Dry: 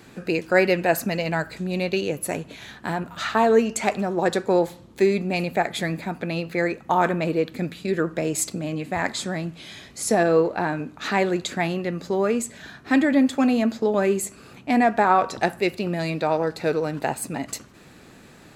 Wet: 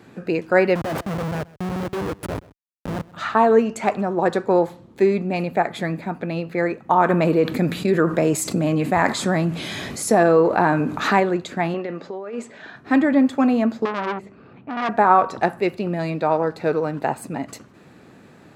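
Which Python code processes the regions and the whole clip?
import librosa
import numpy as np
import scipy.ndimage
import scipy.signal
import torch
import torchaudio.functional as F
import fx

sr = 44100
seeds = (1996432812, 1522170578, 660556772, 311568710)

y = fx.chain(x, sr, fx.schmitt(flips_db=-26.0),
    fx.echo_single(ms=129, db=-21.0), at=(0.75, 3.14))
y = fx.chain(y, sr, fx.high_shelf(hz=7600.0, db=9.5),
    fx.env_flatten(amount_pct=50), at=(7.09, 11.2))
y = fx.chain(y, sr, fx.lowpass(hz=6000.0, slope=12),
    fx.bass_treble(bass_db=-14, treble_db=-4),
    fx.over_compress(threshold_db=-30.0, ratio=-1.0), at=(11.74, 12.76))
y = fx.chain(y, sr, fx.air_absorb(metres=300.0),
    fx.transformer_sat(knee_hz=2400.0), at=(13.85, 14.89))
y = fx.dynamic_eq(y, sr, hz=1100.0, q=1.6, threshold_db=-35.0, ratio=4.0, max_db=5)
y = scipy.signal.sosfilt(scipy.signal.butter(2, 90.0, 'highpass', fs=sr, output='sos'), y)
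y = fx.high_shelf(y, sr, hz=2500.0, db=-11.0)
y = y * librosa.db_to_amplitude(2.0)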